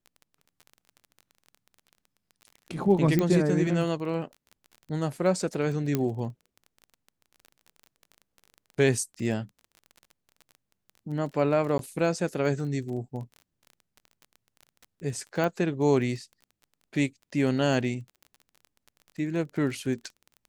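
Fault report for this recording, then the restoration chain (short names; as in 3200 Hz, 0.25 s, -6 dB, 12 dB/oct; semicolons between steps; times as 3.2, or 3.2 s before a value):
crackle 25/s -37 dBFS
3.19 pop -12 dBFS
5.95 pop -12 dBFS
11.78–11.79 gap 12 ms
15.44 pop -17 dBFS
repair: de-click; interpolate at 11.78, 12 ms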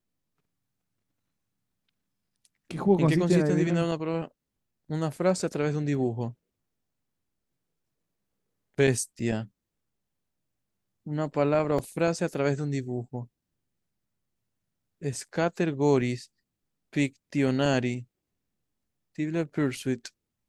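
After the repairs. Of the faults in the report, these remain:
5.95 pop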